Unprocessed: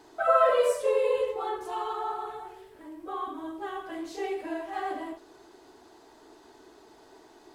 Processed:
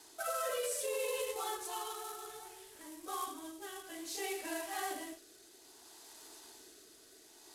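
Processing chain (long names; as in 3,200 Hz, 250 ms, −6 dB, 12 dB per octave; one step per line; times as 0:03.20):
variable-slope delta modulation 64 kbit/s
first-order pre-emphasis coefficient 0.9
rotating-speaker cabinet horn 0.6 Hz
brickwall limiter −39.5 dBFS, peak gain reduction 8.5 dB
level +11.5 dB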